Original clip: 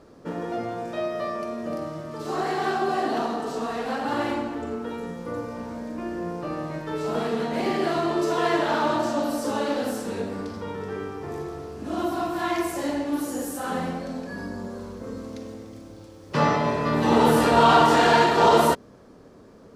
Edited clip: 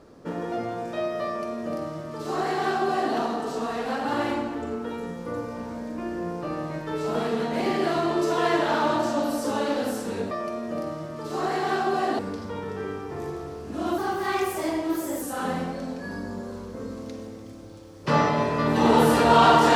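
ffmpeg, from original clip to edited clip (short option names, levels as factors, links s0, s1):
-filter_complex "[0:a]asplit=5[s0][s1][s2][s3][s4];[s0]atrim=end=10.312[s5];[s1]atrim=start=1.258:end=3.142[s6];[s2]atrim=start=10.308:end=12.104[s7];[s3]atrim=start=12.1:end=13.49,asetpts=PTS-STARTPTS,asetrate=49392,aresample=44100,atrim=end_sample=54731,asetpts=PTS-STARTPTS[s8];[s4]atrim=start=13.486[s9];[s5][s6]acrossfade=d=0.004:c1=hsin:c2=hsin[s10];[s10][s7]acrossfade=d=0.004:c1=hsin:c2=hsin[s11];[s11][s8]acrossfade=d=0.004:c1=hsin:c2=hsin[s12];[s12][s9]acrossfade=d=0.004:c1=hsin:c2=hsin"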